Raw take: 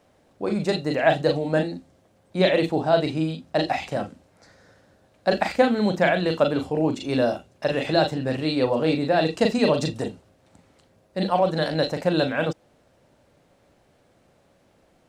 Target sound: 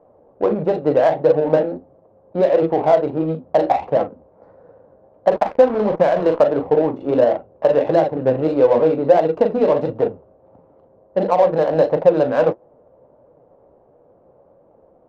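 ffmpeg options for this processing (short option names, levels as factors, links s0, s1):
-filter_complex "[0:a]acompressor=threshold=0.0891:ratio=10,asettb=1/sr,asplit=3[s0][s1][s2];[s0]atrim=end=5.314[s3];[s1]atrim=start=5.31:end=6.43,asetpts=PTS-STARTPTS,afade=t=in:d=0.004:c=qsin,afade=t=out:st=1.116:d=0.004:c=qsin,acrusher=bits=4:mix=0:aa=0.5[s4];[s2]atrim=start=6.426[s5];[s3][s4]acrossfade=d=0.004:c1=hsin:c2=qsin[s6];[s6][s5]acrossfade=d=0.004:c1=qsin:c2=hsin,flanger=delay=6:depth=9.9:regen=55:speed=1.5:shape=sinusoidal,equalizer=f=500:t=o:w=1:g=12,equalizer=f=1000:t=o:w=1:g=9,equalizer=f=2000:t=o:w=1:g=-6,equalizer=f=4000:t=o:w=1:g=-4,equalizer=f=8000:t=o:w=1:g=-10,adynamicsmooth=sensitivity=2:basefreq=1100,volume=1.78"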